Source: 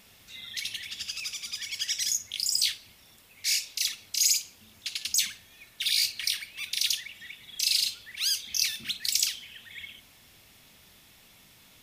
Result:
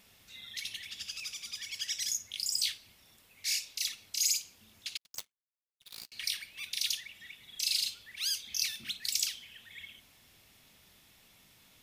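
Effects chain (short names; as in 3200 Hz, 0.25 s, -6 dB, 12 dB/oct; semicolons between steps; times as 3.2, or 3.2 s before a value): 4.97–6.12 power-law curve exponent 3; gain -5.5 dB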